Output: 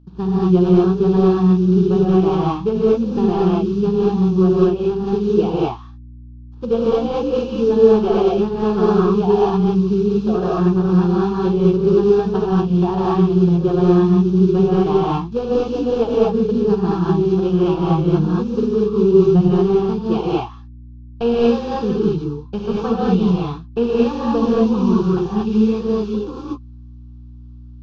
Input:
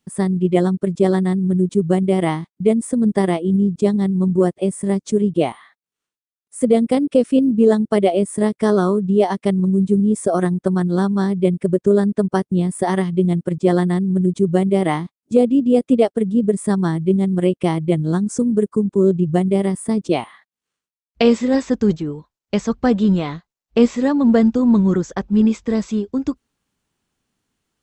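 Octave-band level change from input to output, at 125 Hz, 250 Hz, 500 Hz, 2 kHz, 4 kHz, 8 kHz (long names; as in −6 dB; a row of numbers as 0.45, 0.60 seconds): +2.5 dB, 0.0 dB, +2.5 dB, −5.0 dB, 0.0 dB, below −10 dB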